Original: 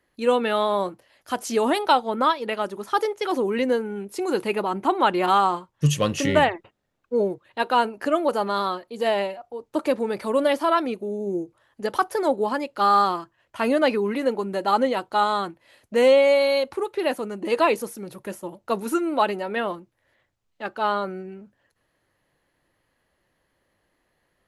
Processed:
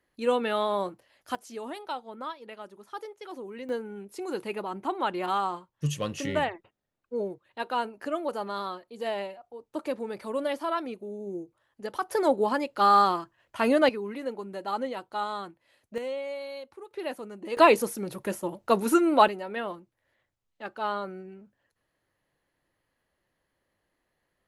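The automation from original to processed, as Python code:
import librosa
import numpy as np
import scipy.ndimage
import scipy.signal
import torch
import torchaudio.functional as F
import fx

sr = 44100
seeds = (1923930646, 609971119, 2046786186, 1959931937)

y = fx.gain(x, sr, db=fx.steps((0.0, -5.0), (1.35, -16.5), (3.69, -9.0), (12.09, -1.5), (13.89, -10.5), (15.98, -18.0), (16.91, -10.0), (17.57, 2.0), (19.28, -7.0)))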